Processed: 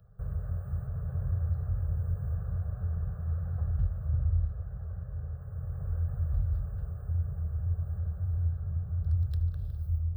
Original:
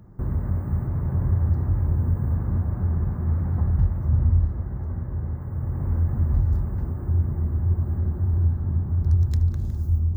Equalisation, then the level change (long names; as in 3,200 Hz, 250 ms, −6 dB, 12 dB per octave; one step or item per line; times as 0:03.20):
elliptic band-stop filter 180–420 Hz
phaser with its sweep stopped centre 1,400 Hz, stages 8
−7.0 dB